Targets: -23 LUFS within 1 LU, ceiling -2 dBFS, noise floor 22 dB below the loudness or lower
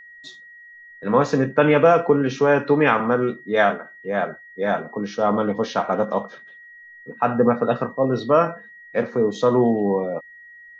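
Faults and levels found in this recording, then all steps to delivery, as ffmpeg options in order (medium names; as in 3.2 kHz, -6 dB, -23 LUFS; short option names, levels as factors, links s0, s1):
steady tone 1.9 kHz; tone level -42 dBFS; loudness -20.5 LUFS; peak level -3.5 dBFS; loudness target -23.0 LUFS
-> -af "bandreject=f=1900:w=30"
-af "volume=0.75"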